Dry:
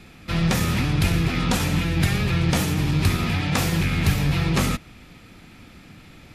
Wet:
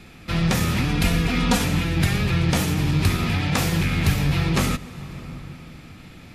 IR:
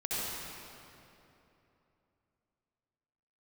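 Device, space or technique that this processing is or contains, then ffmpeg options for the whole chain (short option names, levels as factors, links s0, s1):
ducked reverb: -filter_complex "[0:a]asplit=3[s0][s1][s2];[1:a]atrim=start_sample=2205[s3];[s1][s3]afir=irnorm=-1:irlink=0[s4];[s2]apad=whole_len=279689[s5];[s4][s5]sidechaincompress=threshold=0.0398:ratio=8:attack=8.1:release=607,volume=0.2[s6];[s0][s6]amix=inputs=2:normalize=0,asettb=1/sr,asplit=3[s7][s8][s9];[s7]atrim=end=0.884[s10];[s8]atrim=start=0.88:end=1.65,asetpts=PTS-STARTPTS,afade=t=in:d=0.004:c=qsin,afade=t=out:st=0.766:d=0.004:c=qsin,aecho=1:1:4.2:0.65,atrim=end_sample=33957[s11];[s9]atrim=start=1.646[s12];[s10][s11]acrossfade=d=0.004:c1=hsin:c2=qsin[s13];[s13][s12]acrossfade=d=0.004:c1=qsin:c2=hsin"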